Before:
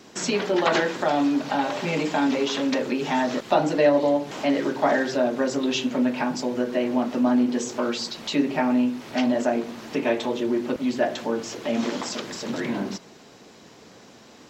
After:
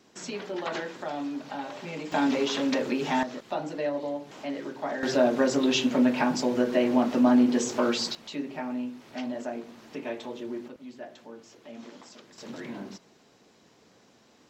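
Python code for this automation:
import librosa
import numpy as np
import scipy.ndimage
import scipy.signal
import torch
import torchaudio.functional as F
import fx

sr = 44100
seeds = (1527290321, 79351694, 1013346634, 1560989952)

y = fx.gain(x, sr, db=fx.steps((0.0, -11.5), (2.12, -2.5), (3.23, -11.5), (5.03, 0.5), (8.15, -11.5), (10.68, -19.0), (12.38, -11.0)))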